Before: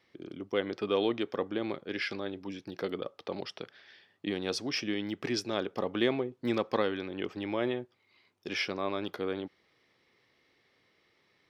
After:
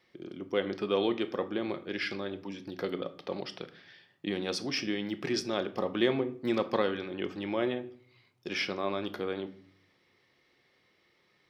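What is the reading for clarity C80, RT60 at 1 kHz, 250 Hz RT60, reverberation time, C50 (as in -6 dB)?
19.5 dB, 0.50 s, 0.90 s, 0.55 s, 16.0 dB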